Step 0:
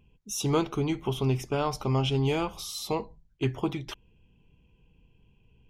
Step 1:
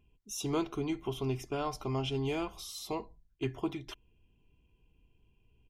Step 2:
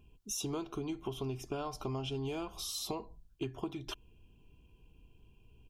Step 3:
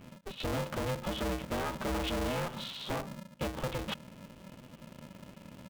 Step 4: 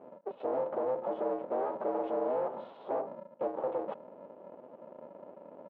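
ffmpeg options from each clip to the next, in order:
-af "aecho=1:1:2.9:0.4,volume=-7dB"
-af "equalizer=f=2k:w=5.9:g=-13,acompressor=threshold=-42dB:ratio=6,volume=6.5dB"
-af "aresample=8000,asoftclip=type=tanh:threshold=-38.5dB,aresample=44100,aeval=exprs='val(0)*sgn(sin(2*PI*190*n/s))':c=same,volume=9dB"
-filter_complex "[0:a]asplit=2[a][b];[b]aeval=exprs='0.0168*(abs(mod(val(0)/0.0168+3,4)-2)-1)':c=same,volume=-4dB[c];[a][c]amix=inputs=2:normalize=0,asuperpass=centerf=570:order=4:qfactor=1.2,volume=4.5dB"

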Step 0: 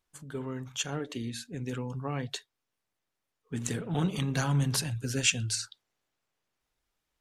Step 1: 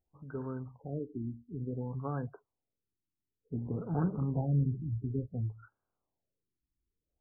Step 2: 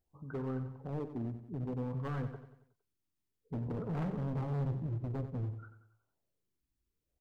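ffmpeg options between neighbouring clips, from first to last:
-af "equalizer=f=69:w=1.6:g=6.5,afftfilt=real='re*lt(b*sr/1024,370*pow(1700/370,0.5+0.5*sin(2*PI*0.56*pts/sr)))':imag='im*lt(b*sr/1024,370*pow(1700/370,0.5+0.5*sin(2*PI*0.56*pts/sr)))':win_size=1024:overlap=0.75,volume=-2.5dB"
-af "volume=35dB,asoftclip=hard,volume=-35dB,aecho=1:1:92|184|276|368|460:0.282|0.135|0.0649|0.0312|0.015,volume=1.5dB"

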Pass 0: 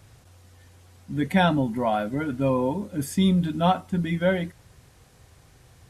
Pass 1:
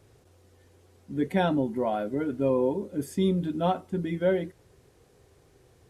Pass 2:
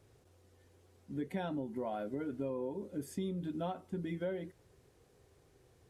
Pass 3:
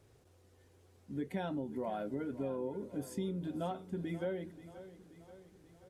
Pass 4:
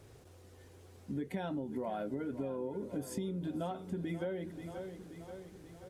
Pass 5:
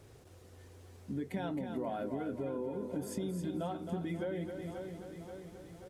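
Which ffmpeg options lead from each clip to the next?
-af "equalizer=f=400:t=o:w=0.96:g=13.5,volume=-8.5dB"
-af "acompressor=threshold=-28dB:ratio=5,volume=-6.5dB"
-af "aecho=1:1:532|1064|1596|2128|2660:0.178|0.0996|0.0558|0.0312|0.0175"
-af "acompressor=threshold=-45dB:ratio=3,volume=8dB"
-af "aecho=1:1:266:0.447"

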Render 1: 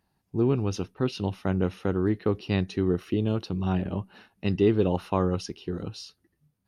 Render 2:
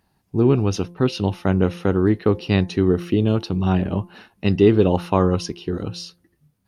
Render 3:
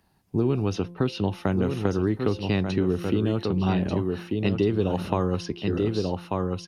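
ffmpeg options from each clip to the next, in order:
-af "bandreject=f=173.8:t=h:w=4,bandreject=f=347.6:t=h:w=4,bandreject=f=521.4:t=h:w=4,bandreject=f=695.2:t=h:w=4,bandreject=f=869:t=h:w=4,bandreject=f=1.0428k:t=h:w=4,volume=7.5dB"
-filter_complex "[0:a]aecho=1:1:1189:0.398,acrossover=split=140|4200[a][b][c];[a]acompressor=threshold=-31dB:ratio=4[d];[b]acompressor=threshold=-22dB:ratio=4[e];[c]acompressor=threshold=-48dB:ratio=4[f];[d][e][f]amix=inputs=3:normalize=0"

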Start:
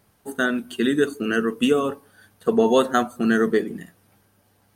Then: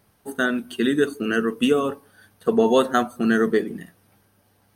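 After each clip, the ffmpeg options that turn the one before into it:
-af "bandreject=f=7.2k:w=6.5"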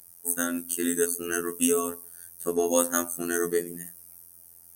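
-af "aexciter=amount=10.6:drive=7.6:freq=5.7k,afftfilt=real='hypot(re,im)*cos(PI*b)':imag='0':win_size=2048:overlap=0.75,volume=-4dB"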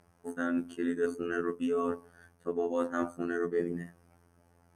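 -af "lowpass=1.8k,areverse,acompressor=threshold=-32dB:ratio=10,areverse,volume=5dB"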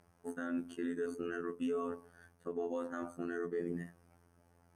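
-af "alimiter=limit=-24dB:level=0:latency=1:release=94,volume=-3dB"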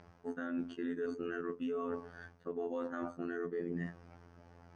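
-af "lowpass=f=5.4k:w=0.5412,lowpass=f=5.4k:w=1.3066,areverse,acompressor=threshold=-46dB:ratio=4,areverse,volume=9.5dB"

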